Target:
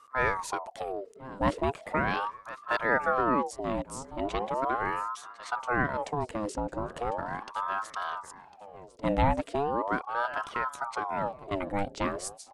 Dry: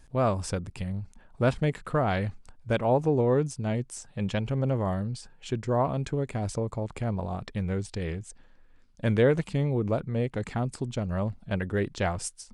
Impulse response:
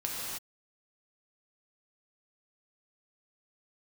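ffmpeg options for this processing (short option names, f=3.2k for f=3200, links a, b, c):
-filter_complex "[0:a]asplit=2[a][b];[b]aecho=0:1:1052|2104:0.158|0.0333[c];[a][c]amix=inputs=2:normalize=0,aeval=exprs='val(0)*sin(2*PI*790*n/s+790*0.5/0.38*sin(2*PI*0.38*n/s))':c=same"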